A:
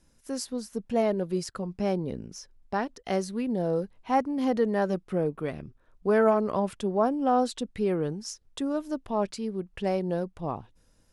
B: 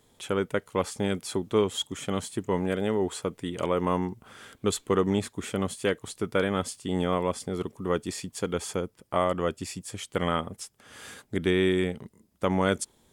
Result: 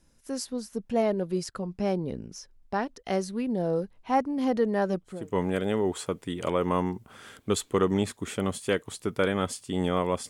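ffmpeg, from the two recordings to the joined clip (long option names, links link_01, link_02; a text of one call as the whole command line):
ffmpeg -i cue0.wav -i cue1.wav -filter_complex "[0:a]apad=whole_dur=10.29,atrim=end=10.29,atrim=end=5.36,asetpts=PTS-STARTPTS[link_01];[1:a]atrim=start=2.16:end=7.45,asetpts=PTS-STARTPTS[link_02];[link_01][link_02]acrossfade=duration=0.36:curve1=qua:curve2=qua" out.wav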